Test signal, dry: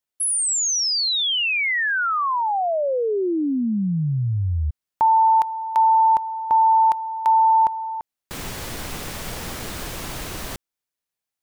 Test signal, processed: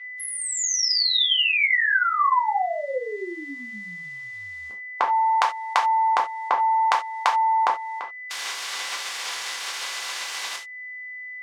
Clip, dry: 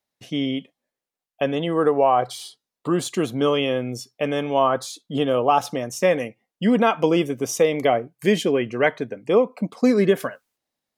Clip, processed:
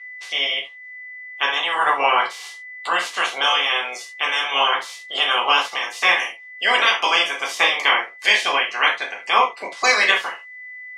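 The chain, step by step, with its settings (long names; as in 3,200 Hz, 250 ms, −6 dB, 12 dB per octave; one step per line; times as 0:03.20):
ceiling on every frequency bin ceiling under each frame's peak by 27 dB
steady tone 2,000 Hz −49 dBFS
band-pass filter 790–5,500 Hz
reverb whose tail is shaped and stops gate 110 ms falling, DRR −1.5 dB
one half of a high-frequency compander encoder only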